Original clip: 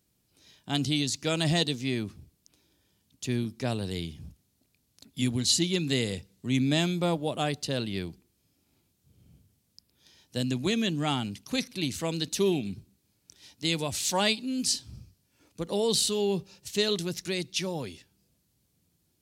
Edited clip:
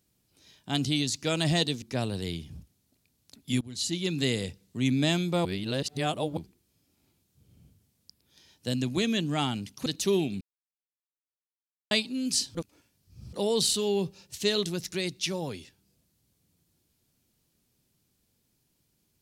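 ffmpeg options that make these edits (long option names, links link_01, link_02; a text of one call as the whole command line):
ffmpeg -i in.wav -filter_complex "[0:a]asplit=10[link_01][link_02][link_03][link_04][link_05][link_06][link_07][link_08][link_09][link_10];[link_01]atrim=end=1.822[link_11];[link_02]atrim=start=3.508:end=5.3,asetpts=PTS-STARTPTS,afade=type=out:start_time=1.788:duration=0.004:curve=hsin:silence=0.0891251[link_12];[link_03]atrim=start=5.3:end=7.142,asetpts=PTS-STARTPTS,afade=type=in:duration=0.59:silence=0.0891251[link_13];[link_04]atrim=start=7.138:end=8.062,asetpts=PTS-STARTPTS,areverse[link_14];[link_05]atrim=start=8.058:end=11.552[link_15];[link_06]atrim=start=12.188:end=12.74,asetpts=PTS-STARTPTS,afade=type=out:start_time=0.548:duration=0.004:curve=hsin[link_16];[link_07]atrim=start=12.74:end=14.24,asetpts=PTS-STARTPTS,volume=0[link_17];[link_08]atrim=start=14.24:end=14.882,asetpts=PTS-STARTPTS,afade=type=in:duration=0.004:curve=hsin[link_18];[link_09]atrim=start=14.878:end=15.662,asetpts=PTS-STARTPTS,areverse[link_19];[link_10]atrim=start=15.658[link_20];[link_12][link_13]concat=n=2:v=0:a=1[link_21];[link_11][link_21]acrossfade=duration=0.004:curve1=hsin:curve2=hsin[link_22];[link_22][link_14]acrossfade=duration=0.004:curve1=hsin:curve2=hsin[link_23];[link_23][link_15]acrossfade=duration=0.004:curve1=hsin:curve2=hsin[link_24];[link_16][link_17][link_18]concat=n=3:v=0:a=1[link_25];[link_24][link_25]acrossfade=duration=0.004:curve1=hsin:curve2=hsin[link_26];[link_26][link_19]acrossfade=duration=0.004:curve1=hsin:curve2=hsin[link_27];[link_27][link_20]acrossfade=duration=0.004:curve1=hsin:curve2=hsin" out.wav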